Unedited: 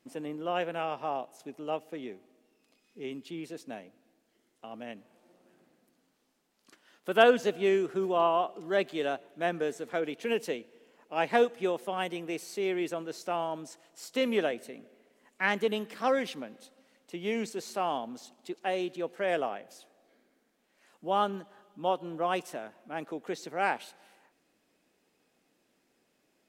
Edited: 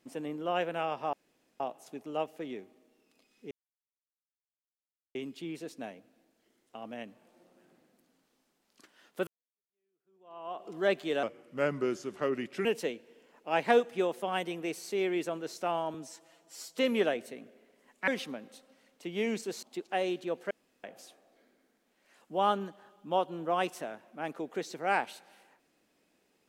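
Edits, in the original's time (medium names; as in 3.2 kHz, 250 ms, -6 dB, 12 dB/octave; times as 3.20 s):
1.13 s: insert room tone 0.47 s
3.04 s: insert silence 1.64 s
7.16–8.56 s: fade in exponential
9.12–10.30 s: speed 83%
13.59–14.14 s: stretch 1.5×
15.45–16.16 s: delete
17.71–18.35 s: delete
19.23–19.56 s: room tone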